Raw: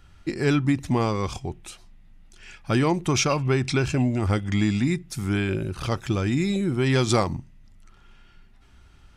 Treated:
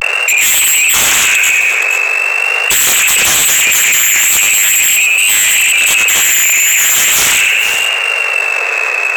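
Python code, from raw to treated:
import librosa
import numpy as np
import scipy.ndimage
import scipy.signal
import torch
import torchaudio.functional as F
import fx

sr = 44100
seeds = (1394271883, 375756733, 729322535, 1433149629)

p1 = scipy.signal.medfilt(x, 25)
p2 = fx.quant_dither(p1, sr, seeds[0], bits=6, dither='triangular')
p3 = p1 + (p2 * 10.0 ** (-6.0 / 20.0))
p4 = fx.freq_invert(p3, sr, carrier_hz=2700)
p5 = fx.leveller(p4, sr, passes=1)
p6 = fx.echo_feedback(p5, sr, ms=101, feedback_pct=47, wet_db=-8)
p7 = np.clip(p6, -10.0 ** (-14.5 / 20.0), 10.0 ** (-14.5 / 20.0))
p8 = scipy.signal.sosfilt(scipy.signal.butter(12, 410.0, 'highpass', fs=sr, output='sos'), p7)
p9 = fx.peak_eq(p8, sr, hz=920.0, db=-4.0, octaves=0.27)
p10 = fx.fold_sine(p9, sr, drive_db=14, ceiling_db=-9.0)
p11 = fx.vibrato(p10, sr, rate_hz=0.42, depth_cents=62.0)
p12 = p11 + fx.echo_multitap(p11, sr, ms=(93, 472), db=(-11.0, -16.0), dry=0)
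p13 = fx.env_flatten(p12, sr, amount_pct=70)
y = p13 * 10.0 ** (1.5 / 20.0)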